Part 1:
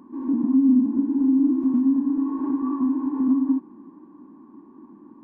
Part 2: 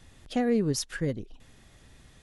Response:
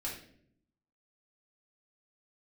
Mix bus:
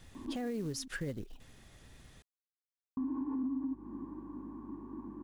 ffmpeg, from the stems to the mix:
-filter_complex "[0:a]acompressor=threshold=0.0355:ratio=6,aeval=exprs='val(0)+0.00141*(sin(2*PI*50*n/s)+sin(2*PI*2*50*n/s)/2+sin(2*PI*3*50*n/s)/3+sin(2*PI*4*50*n/s)/4+sin(2*PI*5*50*n/s)/5)':c=same,adelay=150,volume=1.12,asplit=3[s0][s1][s2];[s0]atrim=end=0.88,asetpts=PTS-STARTPTS,afade=t=out:st=0.876:d=0.004:c=hsin[s3];[s1]atrim=start=0.88:end=2.97,asetpts=PTS-STARTPTS,volume=0[s4];[s2]atrim=start=2.97,asetpts=PTS-STARTPTS,afade=t=in:d=0.004:c=hsin[s5];[s3][s4][s5]concat=n=3:v=0:a=1[s6];[1:a]acompressor=threshold=0.0398:ratio=3,acrusher=bits=6:mode=log:mix=0:aa=0.000001,volume=0.794,asplit=2[s7][s8];[s8]apad=whole_len=237603[s9];[s6][s9]sidechaincompress=threshold=0.00251:ratio=8:attack=47:release=457[s10];[s10][s7]amix=inputs=2:normalize=0,alimiter=level_in=1.88:limit=0.0631:level=0:latency=1:release=145,volume=0.531"

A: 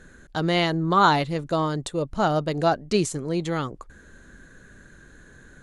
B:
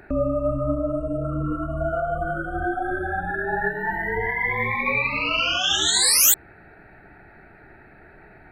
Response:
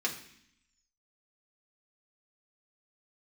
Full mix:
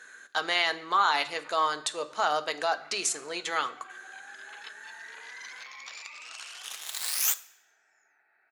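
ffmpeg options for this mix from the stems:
-filter_complex "[0:a]alimiter=limit=0.158:level=0:latency=1,volume=1.12,asplit=3[s0][s1][s2];[s1]volume=0.398[s3];[1:a]aeval=exprs='0.75*(cos(1*acos(clip(val(0)/0.75,-1,1)))-cos(1*PI/2))+0.0335*(cos(3*acos(clip(val(0)/0.75,-1,1)))-cos(3*PI/2))+0.0266*(cos(5*acos(clip(val(0)/0.75,-1,1)))-cos(5*PI/2))+0.0299*(cos(6*acos(clip(val(0)/0.75,-1,1)))-cos(6*PI/2))+0.15*(cos(7*acos(clip(val(0)/0.75,-1,1)))-cos(7*PI/2))':c=same,adelay=1000,volume=0.316,asplit=2[s4][s5];[s5]volume=0.282[s6];[s2]apad=whole_len=419614[s7];[s4][s7]sidechaincompress=threshold=0.0126:ratio=8:attack=16:release=106[s8];[2:a]atrim=start_sample=2205[s9];[s3][s6]amix=inputs=2:normalize=0[s10];[s10][s9]afir=irnorm=-1:irlink=0[s11];[s0][s8][s11]amix=inputs=3:normalize=0,highpass=980"

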